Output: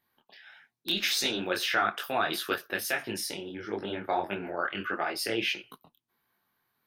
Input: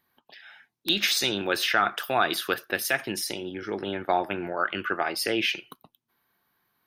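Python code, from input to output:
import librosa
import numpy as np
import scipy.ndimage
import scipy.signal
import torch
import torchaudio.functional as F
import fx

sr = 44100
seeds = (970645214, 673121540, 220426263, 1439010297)

y = fx.detune_double(x, sr, cents=55)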